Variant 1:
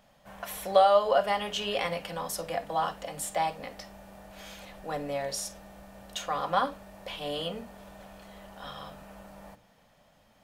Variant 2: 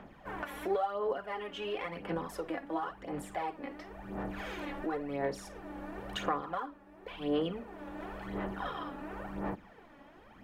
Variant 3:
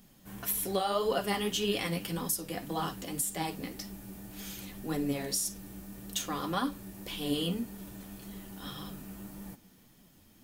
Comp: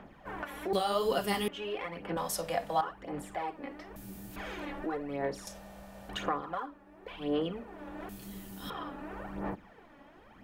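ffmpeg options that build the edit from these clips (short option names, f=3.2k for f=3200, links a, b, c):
-filter_complex "[2:a]asplit=3[a][b][c];[0:a]asplit=2[d][e];[1:a]asplit=6[f][g][h][i][j][k];[f]atrim=end=0.732[l];[a]atrim=start=0.728:end=1.482[m];[g]atrim=start=1.478:end=2.172[n];[d]atrim=start=2.168:end=2.812[o];[h]atrim=start=2.808:end=3.962[p];[b]atrim=start=3.958:end=4.362[q];[i]atrim=start=4.358:end=5.472[r];[e]atrim=start=5.468:end=6.092[s];[j]atrim=start=6.088:end=8.092[t];[c]atrim=start=8.088:end=8.702[u];[k]atrim=start=8.698[v];[l][m]acrossfade=d=0.004:c1=hsin:c2=hsin[w];[w][n]acrossfade=d=0.004:c1=hsin:c2=hsin[x];[x][o]acrossfade=d=0.004:c1=hsin:c2=hsin[y];[y][p]acrossfade=d=0.004:c1=hsin:c2=hsin[z];[z][q]acrossfade=d=0.004:c1=hsin:c2=hsin[aa];[aa][r]acrossfade=d=0.004:c1=hsin:c2=hsin[ab];[ab][s]acrossfade=d=0.004:c1=hsin:c2=hsin[ac];[ac][t]acrossfade=d=0.004:c1=hsin:c2=hsin[ad];[ad][u]acrossfade=d=0.004:c1=hsin:c2=hsin[ae];[ae][v]acrossfade=d=0.004:c1=hsin:c2=hsin"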